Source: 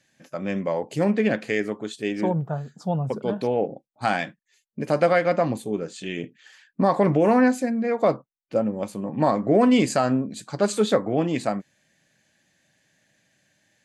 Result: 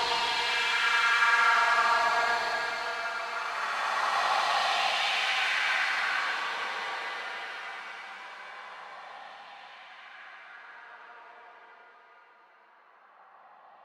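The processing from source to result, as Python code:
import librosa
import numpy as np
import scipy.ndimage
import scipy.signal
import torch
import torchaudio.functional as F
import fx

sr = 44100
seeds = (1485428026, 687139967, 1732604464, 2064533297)

p1 = fx.over_compress(x, sr, threshold_db=-21.0, ratio=-0.5)
p2 = x + (p1 * 10.0 ** (1.0 / 20.0))
p3 = (np.mod(10.0 ** (13.0 / 20.0) * p2 + 1.0, 2.0) - 1.0) / 10.0 ** (13.0 / 20.0)
p4 = fx.spacing_loss(p3, sr, db_at_10k=27)
p5 = fx.filter_lfo_highpass(p4, sr, shape='saw_down', hz=9.8, low_hz=720.0, high_hz=4300.0, q=5.1)
p6 = fx.high_shelf(p5, sr, hz=6600.0, db=9.0)
p7 = p6 + fx.echo_tape(p6, sr, ms=202, feedback_pct=52, wet_db=-15.5, lp_hz=1100.0, drive_db=1.0, wow_cents=22, dry=0)
p8 = fx.rev_schroeder(p7, sr, rt60_s=0.35, comb_ms=31, drr_db=7.0)
p9 = fx.paulstretch(p8, sr, seeds[0], factor=23.0, window_s=0.1, from_s=7.86)
y = p9 * 10.0 ** (-8.5 / 20.0)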